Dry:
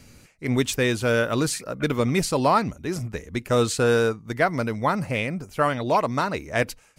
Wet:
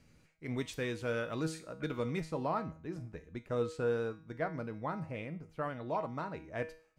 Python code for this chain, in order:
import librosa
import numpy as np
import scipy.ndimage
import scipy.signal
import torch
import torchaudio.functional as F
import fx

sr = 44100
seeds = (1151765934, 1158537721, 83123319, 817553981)

y = fx.lowpass(x, sr, hz=fx.steps((0.0, 3500.0), (2.2, 1300.0)), slope=6)
y = fx.comb_fb(y, sr, f0_hz=160.0, decay_s=0.45, harmonics='all', damping=0.0, mix_pct=70)
y = F.gain(torch.from_numpy(y), -5.0).numpy()